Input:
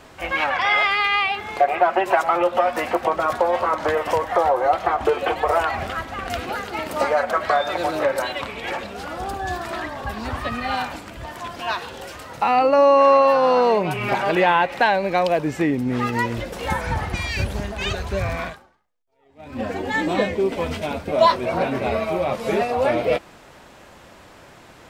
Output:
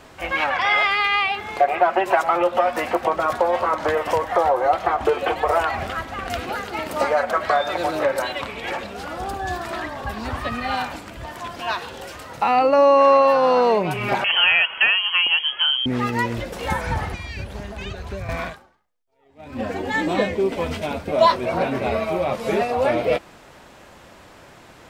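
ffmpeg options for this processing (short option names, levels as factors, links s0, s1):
-filter_complex "[0:a]asettb=1/sr,asplit=3[s0][s1][s2];[s0]atrim=end=14.244[s3];[s1]atrim=start=14.24:end=15.86,asetpts=PTS-STARTPTS,afade=t=in:d=0.004:c=qsin,afade=t=out:st=1.616:d=0.004:c=qsin,lowpass=f=2900:t=q:w=0.5098,lowpass=f=2900:t=q:w=0.6013,lowpass=f=2900:t=q:w=0.9,lowpass=f=2900:t=q:w=2.563,afreqshift=-3400[s4];[s2]atrim=start=15.856[s5];[s3][s4]acrossfade=d=0.004:c1=hsin:c2=qsin[s6];[s6][s5]acrossfade=d=0.004:c1=qsin:c2=hsin,asettb=1/sr,asplit=3[s7][s8][s9];[s7]atrim=end=17.124[s10];[s8]atrim=start=17.12:end=18.29,asetpts=PTS-STARTPTS,afade=t=in:d=0.004:c=qsin,afade=t=out:st=1.166:d=0.004:c=qsin,acrossover=split=390|4900[s11][s12][s13];[s11]acompressor=threshold=0.0316:ratio=4[s14];[s12]acompressor=threshold=0.0158:ratio=4[s15];[s13]acompressor=threshold=0.00178:ratio=4[s16];[s14][s15][s16]amix=inputs=3:normalize=0[s17];[s9]atrim=start=18.286[s18];[s10][s17]acrossfade=d=0.004:c1=hsin:c2=qsin[s19];[s19][s18]acrossfade=d=0.004:c1=qsin:c2=hsin"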